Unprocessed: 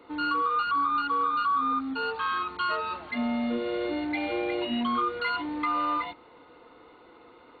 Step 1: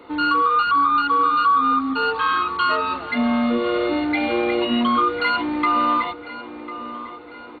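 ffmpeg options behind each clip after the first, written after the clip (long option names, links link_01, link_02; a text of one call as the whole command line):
ffmpeg -i in.wav -filter_complex "[0:a]asplit=2[link_01][link_02];[link_02]adelay=1049,lowpass=frequency=3500:poles=1,volume=-14dB,asplit=2[link_03][link_04];[link_04]adelay=1049,lowpass=frequency=3500:poles=1,volume=0.53,asplit=2[link_05][link_06];[link_06]adelay=1049,lowpass=frequency=3500:poles=1,volume=0.53,asplit=2[link_07][link_08];[link_08]adelay=1049,lowpass=frequency=3500:poles=1,volume=0.53,asplit=2[link_09][link_10];[link_10]adelay=1049,lowpass=frequency=3500:poles=1,volume=0.53[link_11];[link_01][link_03][link_05][link_07][link_09][link_11]amix=inputs=6:normalize=0,volume=8.5dB" out.wav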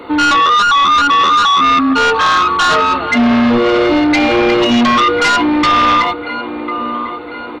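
ffmpeg -i in.wav -af "aeval=exprs='0.376*sin(PI/2*2.51*val(0)/0.376)':channel_layout=same,volume=1dB" out.wav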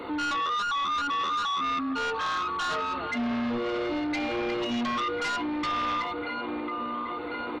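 ffmpeg -i in.wav -af "alimiter=limit=-19.5dB:level=0:latency=1:release=41,volume=-6dB" out.wav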